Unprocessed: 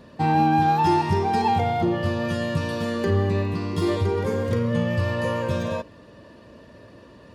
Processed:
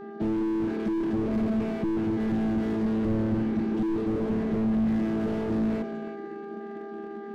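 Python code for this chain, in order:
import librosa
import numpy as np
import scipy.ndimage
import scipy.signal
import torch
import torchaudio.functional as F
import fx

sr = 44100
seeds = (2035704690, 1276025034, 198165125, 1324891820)

p1 = fx.chord_vocoder(x, sr, chord='bare fifth', root=57)
p2 = scipy.signal.sosfilt(scipy.signal.cheby1(2, 1.0, [480.0, 1700.0], 'bandstop', fs=sr, output='sos'), p1)
p3 = fx.high_shelf(p2, sr, hz=3300.0, db=-10.5)
p4 = fx.rider(p3, sr, range_db=10, speed_s=0.5)
p5 = p3 + (p4 * librosa.db_to_amplitude(-1.5))
p6 = fx.dmg_buzz(p5, sr, base_hz=400.0, harmonics=4, level_db=-42.0, tilt_db=-8, odd_only=False)
p7 = p6 + fx.echo_feedback(p6, sr, ms=335, feedback_pct=28, wet_db=-12.5, dry=0)
y = fx.slew_limit(p7, sr, full_power_hz=17.0)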